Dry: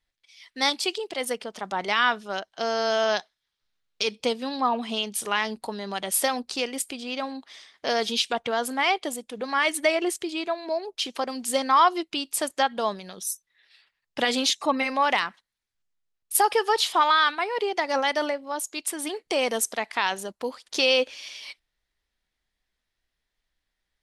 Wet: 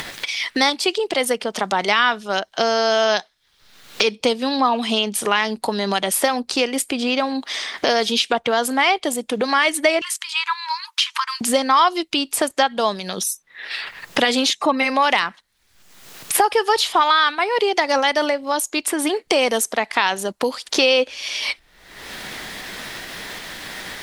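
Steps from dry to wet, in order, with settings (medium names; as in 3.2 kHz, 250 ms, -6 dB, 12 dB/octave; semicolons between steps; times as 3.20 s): in parallel at +1 dB: upward compressor, threshold -26 dBFS; 10.01–11.41 s: on the sum: brick-wall FIR high-pass 890 Hz; three bands compressed up and down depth 70%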